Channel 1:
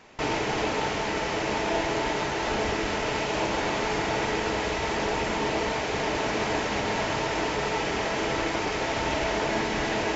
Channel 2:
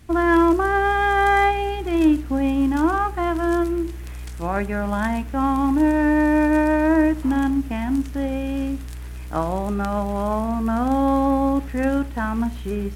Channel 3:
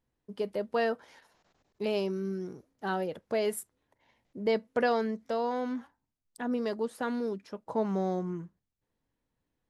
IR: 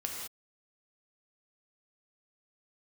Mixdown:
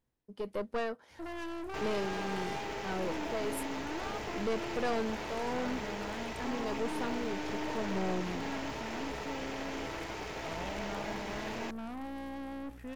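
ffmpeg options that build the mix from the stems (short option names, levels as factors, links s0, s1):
-filter_complex "[0:a]acrusher=bits=7:mode=log:mix=0:aa=0.000001,adelay=1550,volume=0.299[s0];[1:a]highpass=68,aeval=exprs='(tanh(17.8*val(0)+0.4)-tanh(0.4))/17.8':c=same,adelay=1100,volume=0.237[s1];[2:a]tremolo=f=1.6:d=0.48,volume=1.12[s2];[s0][s1][s2]amix=inputs=3:normalize=0,aeval=exprs='(tanh(25.1*val(0)+0.5)-tanh(0.5))/25.1':c=same"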